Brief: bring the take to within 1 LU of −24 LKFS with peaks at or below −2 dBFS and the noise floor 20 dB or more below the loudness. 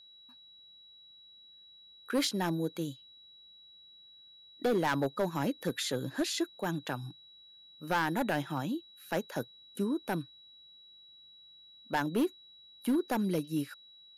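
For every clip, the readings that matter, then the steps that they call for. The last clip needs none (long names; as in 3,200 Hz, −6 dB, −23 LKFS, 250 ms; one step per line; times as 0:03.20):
share of clipped samples 1.0%; peaks flattened at −23.5 dBFS; interfering tone 3,900 Hz; level of the tone −54 dBFS; integrated loudness −33.5 LKFS; sample peak −23.5 dBFS; target loudness −24.0 LKFS
→ clipped peaks rebuilt −23.5 dBFS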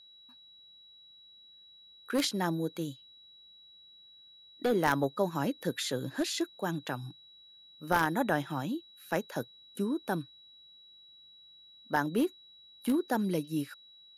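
share of clipped samples 0.0%; interfering tone 3,900 Hz; level of the tone −54 dBFS
→ notch filter 3,900 Hz, Q 30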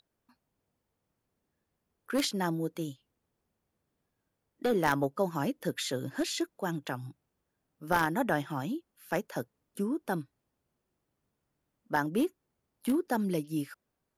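interfering tone none found; integrated loudness −32.5 LKFS; sample peak −14.5 dBFS; target loudness −24.0 LKFS
→ level +8.5 dB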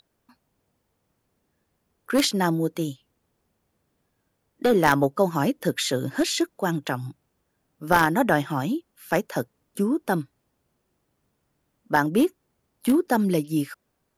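integrated loudness −24.0 LKFS; sample peak −6.0 dBFS; background noise floor −75 dBFS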